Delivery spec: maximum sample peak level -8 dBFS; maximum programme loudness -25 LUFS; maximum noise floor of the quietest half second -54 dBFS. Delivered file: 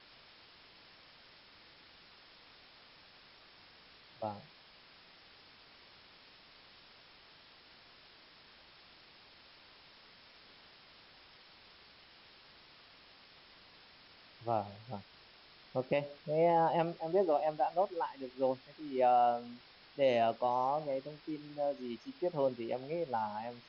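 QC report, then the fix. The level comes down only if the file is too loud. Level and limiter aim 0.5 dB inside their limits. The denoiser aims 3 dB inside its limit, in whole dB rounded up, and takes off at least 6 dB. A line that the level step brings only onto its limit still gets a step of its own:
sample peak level -18.5 dBFS: pass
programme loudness -34.5 LUFS: pass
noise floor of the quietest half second -60 dBFS: pass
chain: none needed

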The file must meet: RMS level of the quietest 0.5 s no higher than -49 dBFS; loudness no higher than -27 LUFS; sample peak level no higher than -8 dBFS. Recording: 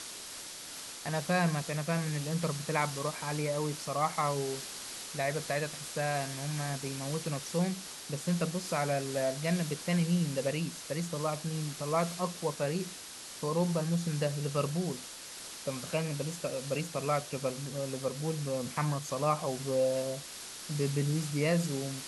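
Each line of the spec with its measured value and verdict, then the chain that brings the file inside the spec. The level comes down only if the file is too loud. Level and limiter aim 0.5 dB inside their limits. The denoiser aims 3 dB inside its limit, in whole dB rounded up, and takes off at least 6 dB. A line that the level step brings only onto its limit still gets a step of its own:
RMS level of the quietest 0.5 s -46 dBFS: fail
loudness -33.5 LUFS: pass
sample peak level -15.0 dBFS: pass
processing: noise reduction 6 dB, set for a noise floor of -46 dBFS

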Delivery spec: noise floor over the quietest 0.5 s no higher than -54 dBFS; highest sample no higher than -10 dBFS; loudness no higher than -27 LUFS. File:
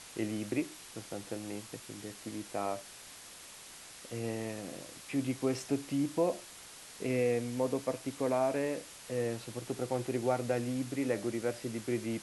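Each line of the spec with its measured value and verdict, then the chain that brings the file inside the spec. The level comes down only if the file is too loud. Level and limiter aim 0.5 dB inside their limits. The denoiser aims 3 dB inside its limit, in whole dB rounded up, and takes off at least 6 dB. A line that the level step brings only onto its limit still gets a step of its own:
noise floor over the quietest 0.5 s -51 dBFS: fail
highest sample -18.5 dBFS: pass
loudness -35.5 LUFS: pass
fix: noise reduction 6 dB, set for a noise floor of -51 dBFS

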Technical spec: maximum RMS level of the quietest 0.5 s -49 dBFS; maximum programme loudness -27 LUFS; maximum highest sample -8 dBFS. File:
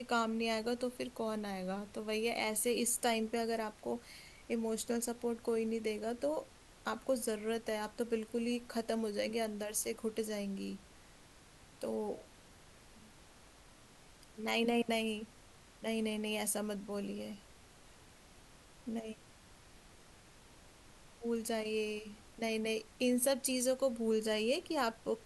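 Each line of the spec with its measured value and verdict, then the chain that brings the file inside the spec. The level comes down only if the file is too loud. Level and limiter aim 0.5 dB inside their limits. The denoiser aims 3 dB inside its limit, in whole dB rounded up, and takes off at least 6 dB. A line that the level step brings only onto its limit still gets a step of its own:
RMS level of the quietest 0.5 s -60 dBFS: pass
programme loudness -37.0 LUFS: pass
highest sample -20.5 dBFS: pass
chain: none needed

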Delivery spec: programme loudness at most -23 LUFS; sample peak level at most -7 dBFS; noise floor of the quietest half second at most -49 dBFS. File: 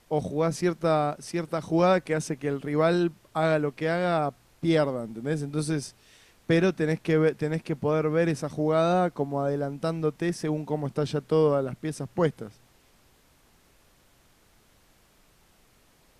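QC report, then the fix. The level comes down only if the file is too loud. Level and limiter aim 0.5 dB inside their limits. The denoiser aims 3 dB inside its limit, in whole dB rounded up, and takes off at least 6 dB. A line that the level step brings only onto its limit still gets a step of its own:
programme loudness -26.5 LUFS: pass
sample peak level -11.0 dBFS: pass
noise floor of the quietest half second -61 dBFS: pass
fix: none needed

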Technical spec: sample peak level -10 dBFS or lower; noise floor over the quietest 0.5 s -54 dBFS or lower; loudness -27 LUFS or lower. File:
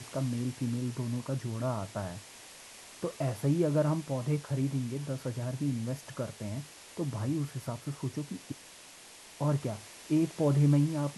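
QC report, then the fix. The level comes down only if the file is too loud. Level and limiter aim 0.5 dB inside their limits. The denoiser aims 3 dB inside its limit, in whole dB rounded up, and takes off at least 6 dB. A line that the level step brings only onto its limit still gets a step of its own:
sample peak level -16.5 dBFS: pass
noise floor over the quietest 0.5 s -52 dBFS: fail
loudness -32.5 LUFS: pass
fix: noise reduction 6 dB, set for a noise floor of -52 dBFS

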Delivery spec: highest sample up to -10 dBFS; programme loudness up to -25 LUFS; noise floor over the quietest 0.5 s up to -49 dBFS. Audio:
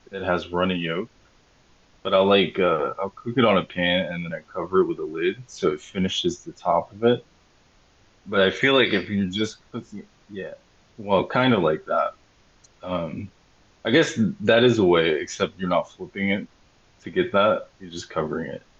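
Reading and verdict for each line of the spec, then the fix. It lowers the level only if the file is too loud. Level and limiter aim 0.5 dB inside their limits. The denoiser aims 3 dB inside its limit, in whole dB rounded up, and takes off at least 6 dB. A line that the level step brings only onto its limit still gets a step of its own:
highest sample -5.0 dBFS: fail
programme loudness -22.5 LUFS: fail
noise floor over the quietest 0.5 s -58 dBFS: pass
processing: trim -3 dB; peak limiter -10.5 dBFS

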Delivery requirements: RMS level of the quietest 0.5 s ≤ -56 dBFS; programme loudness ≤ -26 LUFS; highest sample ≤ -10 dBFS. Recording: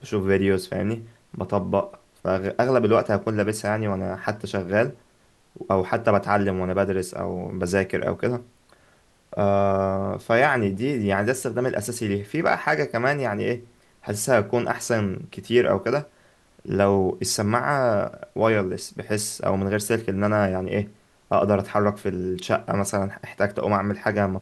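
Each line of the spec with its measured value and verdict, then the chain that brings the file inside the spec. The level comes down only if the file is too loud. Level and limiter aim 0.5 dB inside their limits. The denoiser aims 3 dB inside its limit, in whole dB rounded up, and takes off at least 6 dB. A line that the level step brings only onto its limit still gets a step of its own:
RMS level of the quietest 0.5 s -60 dBFS: pass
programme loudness -24.0 LUFS: fail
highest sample -5.5 dBFS: fail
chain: trim -2.5 dB; peak limiter -10.5 dBFS

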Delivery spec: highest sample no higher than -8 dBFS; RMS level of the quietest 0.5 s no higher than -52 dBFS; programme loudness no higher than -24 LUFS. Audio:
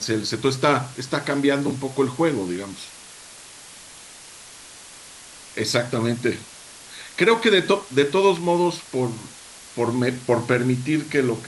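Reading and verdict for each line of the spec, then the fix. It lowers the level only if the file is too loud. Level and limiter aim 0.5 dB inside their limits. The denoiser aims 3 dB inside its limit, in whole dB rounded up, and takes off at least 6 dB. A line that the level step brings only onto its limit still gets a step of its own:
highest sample -4.0 dBFS: fail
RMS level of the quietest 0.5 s -43 dBFS: fail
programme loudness -22.0 LUFS: fail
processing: noise reduction 10 dB, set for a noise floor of -43 dBFS; trim -2.5 dB; peak limiter -8.5 dBFS

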